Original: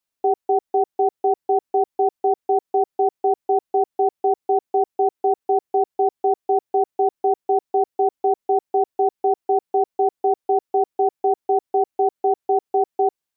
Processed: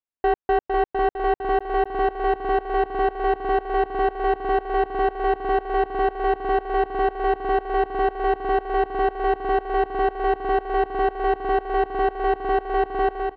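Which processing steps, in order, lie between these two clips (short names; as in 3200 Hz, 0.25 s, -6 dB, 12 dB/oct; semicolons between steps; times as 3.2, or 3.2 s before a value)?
sample leveller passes 3; air absorption 440 m; feedback echo 0.455 s, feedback 53%, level -5 dB; gain -3 dB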